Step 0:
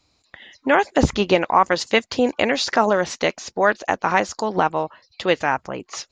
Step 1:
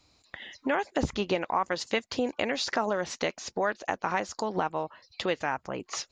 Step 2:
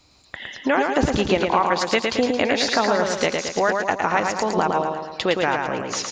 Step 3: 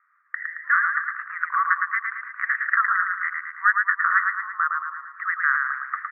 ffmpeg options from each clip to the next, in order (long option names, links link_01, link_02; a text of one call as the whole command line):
ffmpeg -i in.wav -af "acompressor=threshold=-33dB:ratio=2" out.wav
ffmpeg -i in.wav -af "aecho=1:1:111|222|333|444|555|666|777:0.631|0.334|0.177|0.0939|0.0498|0.0264|0.014,volume=7.5dB" out.wav
ffmpeg -i in.wav -af "asuperpass=centerf=1500:order=12:qfactor=1.9,volume=7dB" out.wav